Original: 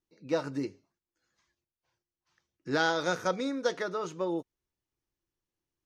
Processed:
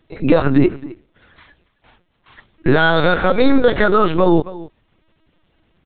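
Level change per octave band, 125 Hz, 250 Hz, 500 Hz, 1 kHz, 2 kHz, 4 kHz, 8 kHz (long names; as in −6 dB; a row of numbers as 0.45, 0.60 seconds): +22.0 dB, +19.0 dB, +16.5 dB, +15.0 dB, +15.0 dB, +12.0 dB, below −25 dB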